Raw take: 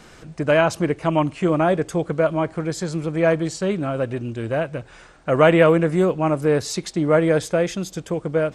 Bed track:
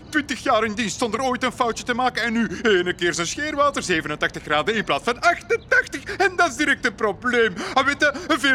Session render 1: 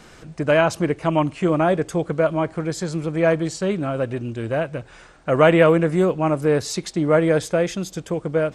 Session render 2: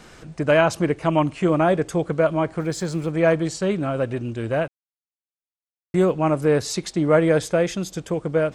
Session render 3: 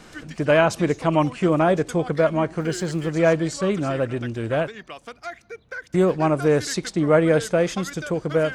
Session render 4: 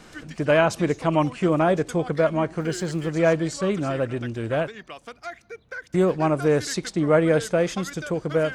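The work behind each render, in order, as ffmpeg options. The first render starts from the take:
-af anull
-filter_complex "[0:a]asplit=3[a][b][c];[a]afade=t=out:st=2.58:d=0.02[d];[b]aeval=exprs='val(0)*gte(abs(val(0)),0.00562)':c=same,afade=t=in:st=2.58:d=0.02,afade=t=out:st=3.09:d=0.02[e];[c]afade=t=in:st=3.09:d=0.02[f];[d][e][f]amix=inputs=3:normalize=0,asplit=3[g][h][i];[g]atrim=end=4.68,asetpts=PTS-STARTPTS,afade=t=out:st=4.676:d=0.004:c=hsin[j];[h]atrim=start=4.68:end=5.94,asetpts=PTS-STARTPTS,volume=0[k];[i]atrim=start=5.94,asetpts=PTS-STARTPTS,afade=t=in:d=0.004:c=hsin[l];[j][k][l]concat=n=3:v=0:a=1"
-filter_complex "[1:a]volume=-17dB[a];[0:a][a]amix=inputs=2:normalize=0"
-af "volume=-1.5dB"

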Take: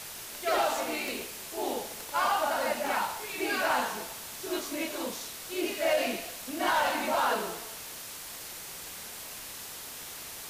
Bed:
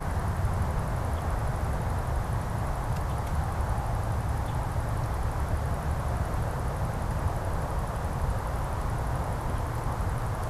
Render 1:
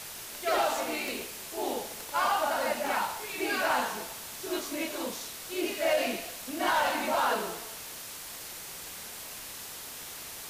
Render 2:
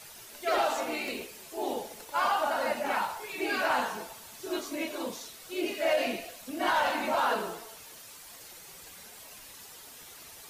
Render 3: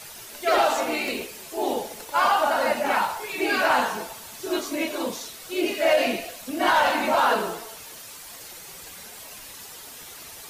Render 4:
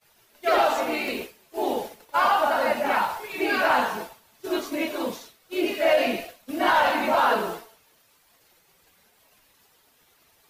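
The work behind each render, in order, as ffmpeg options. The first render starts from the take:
-af anull
-af "afftdn=nr=9:nf=-43"
-af "volume=7dB"
-af "agate=range=-33dB:threshold=-30dB:ratio=3:detection=peak,equalizer=f=7.9k:w=0.73:g=-7"

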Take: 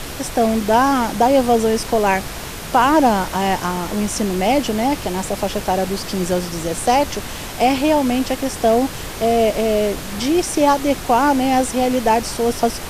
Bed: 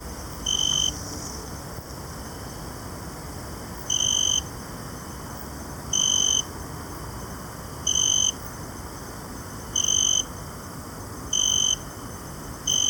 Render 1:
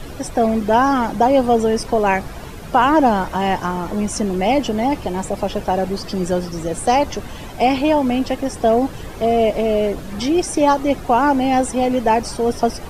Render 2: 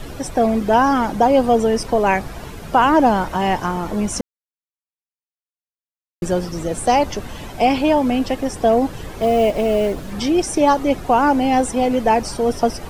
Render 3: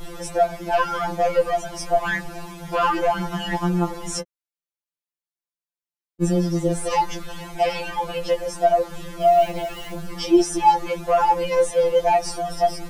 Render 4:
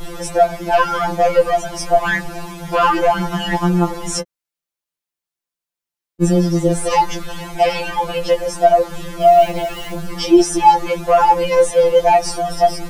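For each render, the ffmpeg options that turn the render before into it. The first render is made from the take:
-af "afftdn=nr=12:nf=-30"
-filter_complex "[0:a]asettb=1/sr,asplit=3[a][b][c];[a]atrim=end=9.214[d];[b]atrim=start=9.21:end=10.11,asetpts=PTS-STARTPTS,afade=t=in:d=0.004:c=qsin,afade=t=out:st=0.896:d=0.004:c=qsin,acrusher=bits=7:mode=log:mix=0:aa=0.000001[e];[c]atrim=start=10.106[f];[d][e]acrossfade=d=0.004:c1=hsin:c2=qsin[g];[g][f]acrossfade=d=0.004:c1=qsin:c2=hsin,asplit=3[h][i][j];[h]atrim=end=4.21,asetpts=PTS-STARTPTS,afade=t=out:st=4.206:d=0.004:c=hsin[k];[i]atrim=start=4.21:end=6.22,asetpts=PTS-STARTPTS,volume=0[l];[j]atrim=start=6.22,asetpts=PTS-STARTPTS,afade=t=in:d=0.004:c=hsin[m];[k][l][m]concat=n=3:v=0:a=1"
-af "asoftclip=type=tanh:threshold=-8dB,afftfilt=real='re*2.83*eq(mod(b,8),0)':imag='im*2.83*eq(mod(b,8),0)':win_size=2048:overlap=0.75"
-af "volume=6dB,alimiter=limit=-1dB:level=0:latency=1"

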